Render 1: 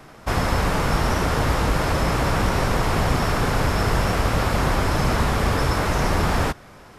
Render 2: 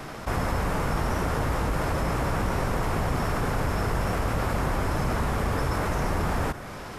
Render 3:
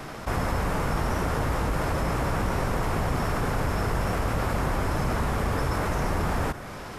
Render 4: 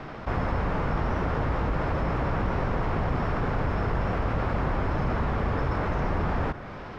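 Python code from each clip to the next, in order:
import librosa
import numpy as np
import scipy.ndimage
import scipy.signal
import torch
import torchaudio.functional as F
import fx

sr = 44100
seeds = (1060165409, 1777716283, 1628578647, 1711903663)

y1 = fx.dynamic_eq(x, sr, hz=4100.0, q=0.86, threshold_db=-45.0, ratio=4.0, max_db=-6)
y1 = fx.env_flatten(y1, sr, amount_pct=50)
y1 = y1 * librosa.db_to_amplitude(-7.0)
y2 = y1
y3 = fx.air_absorb(y2, sr, metres=240.0)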